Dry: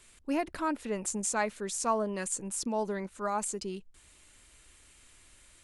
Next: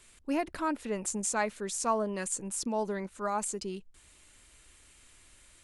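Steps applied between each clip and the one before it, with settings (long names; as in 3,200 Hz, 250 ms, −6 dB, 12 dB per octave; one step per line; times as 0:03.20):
no processing that can be heard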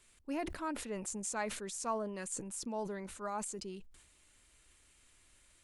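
level that may fall only so fast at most 65 dB per second
level −7.5 dB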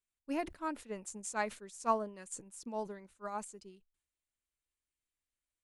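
expander for the loud parts 2.5 to 1, over −56 dBFS
level +7 dB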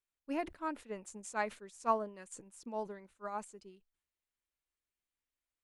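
bass and treble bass −3 dB, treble −6 dB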